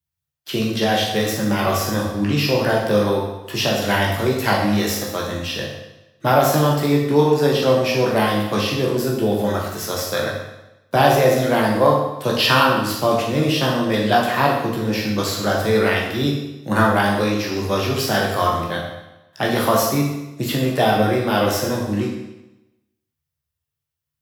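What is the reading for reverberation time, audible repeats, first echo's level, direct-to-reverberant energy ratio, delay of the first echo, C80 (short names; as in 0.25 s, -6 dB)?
0.95 s, none, none, -3.0 dB, none, 5.0 dB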